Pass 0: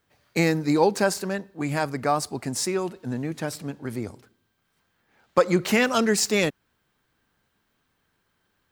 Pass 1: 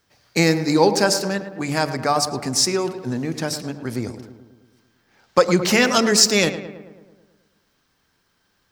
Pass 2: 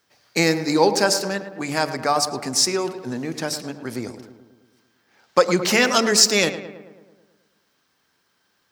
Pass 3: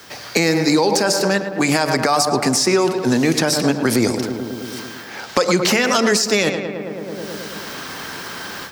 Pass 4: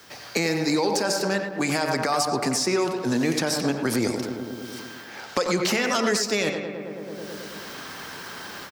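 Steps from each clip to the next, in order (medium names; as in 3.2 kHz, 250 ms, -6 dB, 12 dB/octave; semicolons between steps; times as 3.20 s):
peaking EQ 5.3 kHz +9 dB 0.71 oct; de-hum 73.02 Hz, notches 11; on a send: filtered feedback delay 109 ms, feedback 61%, low-pass 2.3 kHz, level -11 dB; on the sum: trim +4 dB
high-pass 250 Hz 6 dB/octave
level rider gain up to 13.5 dB; peak limiter -10.5 dBFS, peak gain reduction 10 dB; three bands compressed up and down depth 70%; trim +5 dB
speakerphone echo 90 ms, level -7 dB; trim -7.5 dB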